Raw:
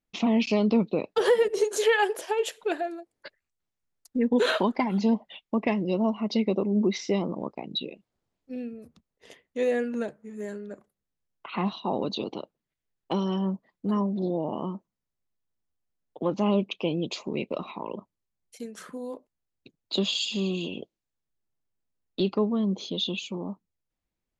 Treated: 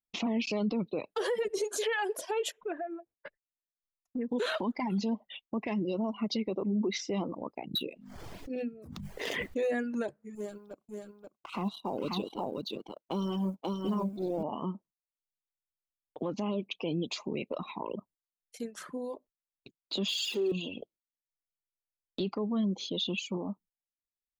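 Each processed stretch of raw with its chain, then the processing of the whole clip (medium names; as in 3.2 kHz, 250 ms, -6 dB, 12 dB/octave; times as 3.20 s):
2.52–4.29 s: boxcar filter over 10 samples + compression 2.5:1, threshold -34 dBFS
7.74–9.73 s: median filter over 5 samples + hum notches 50/100/150/200/250 Hz + swell ahead of each attack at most 25 dB/s
10.35–14.43 s: companding laws mixed up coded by A + peaking EQ 1.8 kHz -12 dB 0.38 oct + delay 533 ms -4 dB
20.08–20.52 s: jump at every zero crossing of -37.5 dBFS + high-pass 280 Hz 24 dB/octave + peaking EQ 380 Hz +13 dB 0.31 oct
whole clip: gate -54 dBFS, range -15 dB; reverb removal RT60 1 s; peak limiter -24 dBFS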